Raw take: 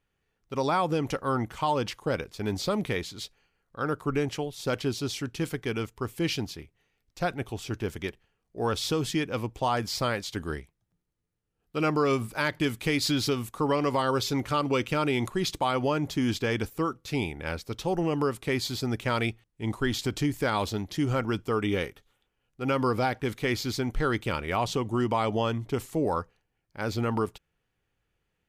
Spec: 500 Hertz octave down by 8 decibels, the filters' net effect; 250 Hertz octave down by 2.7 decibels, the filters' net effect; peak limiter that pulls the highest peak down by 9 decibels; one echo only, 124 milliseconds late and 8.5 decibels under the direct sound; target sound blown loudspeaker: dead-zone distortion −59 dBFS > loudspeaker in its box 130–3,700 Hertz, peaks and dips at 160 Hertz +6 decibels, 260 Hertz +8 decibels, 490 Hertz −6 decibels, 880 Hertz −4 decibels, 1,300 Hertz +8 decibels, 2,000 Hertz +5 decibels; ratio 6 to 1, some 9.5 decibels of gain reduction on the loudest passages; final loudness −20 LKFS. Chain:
parametric band 250 Hz −7.5 dB
parametric band 500 Hz −5 dB
downward compressor 6 to 1, threshold −34 dBFS
brickwall limiter −29.5 dBFS
single-tap delay 124 ms −8.5 dB
dead-zone distortion −59 dBFS
loudspeaker in its box 130–3,700 Hz, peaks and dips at 160 Hz +6 dB, 260 Hz +8 dB, 490 Hz −6 dB, 880 Hz −4 dB, 1,300 Hz +8 dB, 2,000 Hz +5 dB
level +19 dB

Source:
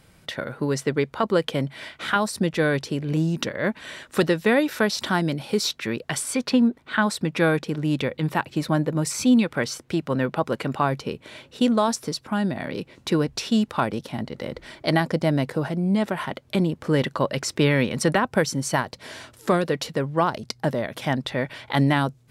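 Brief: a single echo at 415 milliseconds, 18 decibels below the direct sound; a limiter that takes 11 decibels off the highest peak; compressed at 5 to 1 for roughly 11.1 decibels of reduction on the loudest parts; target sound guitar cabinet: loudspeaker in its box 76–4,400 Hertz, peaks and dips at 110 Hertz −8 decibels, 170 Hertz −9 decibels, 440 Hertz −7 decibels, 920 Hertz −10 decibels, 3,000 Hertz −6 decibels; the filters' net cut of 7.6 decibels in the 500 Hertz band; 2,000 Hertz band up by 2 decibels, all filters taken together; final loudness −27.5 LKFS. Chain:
parametric band 500 Hz −5.5 dB
parametric band 2,000 Hz +4 dB
downward compressor 5 to 1, threshold −28 dBFS
brickwall limiter −22.5 dBFS
loudspeaker in its box 76–4,400 Hz, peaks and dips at 110 Hz −8 dB, 170 Hz −9 dB, 440 Hz −7 dB, 920 Hz −10 dB, 3,000 Hz −6 dB
single-tap delay 415 ms −18 dB
level +9.5 dB

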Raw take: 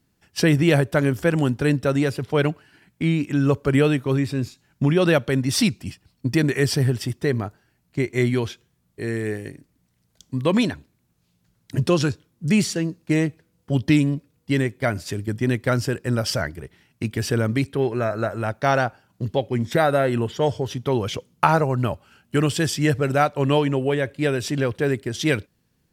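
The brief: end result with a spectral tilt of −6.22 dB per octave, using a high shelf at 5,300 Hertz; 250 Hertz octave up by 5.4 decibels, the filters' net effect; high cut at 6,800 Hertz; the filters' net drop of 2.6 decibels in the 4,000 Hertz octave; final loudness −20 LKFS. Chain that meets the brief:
low-pass filter 6,800 Hz
parametric band 250 Hz +7 dB
parametric band 4,000 Hz −5 dB
high-shelf EQ 5,300 Hz +4.5 dB
level −0.5 dB

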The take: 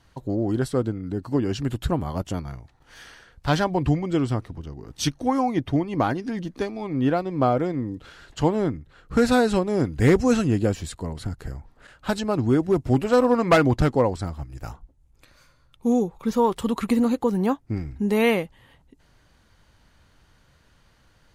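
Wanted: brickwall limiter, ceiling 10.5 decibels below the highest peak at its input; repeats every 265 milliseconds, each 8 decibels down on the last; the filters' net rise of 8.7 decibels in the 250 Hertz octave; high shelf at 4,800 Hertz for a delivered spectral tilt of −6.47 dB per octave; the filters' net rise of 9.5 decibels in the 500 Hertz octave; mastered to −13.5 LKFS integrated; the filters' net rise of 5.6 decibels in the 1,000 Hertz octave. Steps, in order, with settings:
parametric band 250 Hz +8 dB
parametric band 500 Hz +8 dB
parametric band 1,000 Hz +3.5 dB
high-shelf EQ 4,800 Hz +3.5 dB
brickwall limiter −9 dBFS
repeating echo 265 ms, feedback 40%, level −8 dB
level +5.5 dB

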